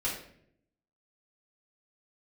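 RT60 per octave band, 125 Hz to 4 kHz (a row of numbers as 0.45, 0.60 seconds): 1.0, 1.0, 0.80, 0.55, 0.60, 0.45 seconds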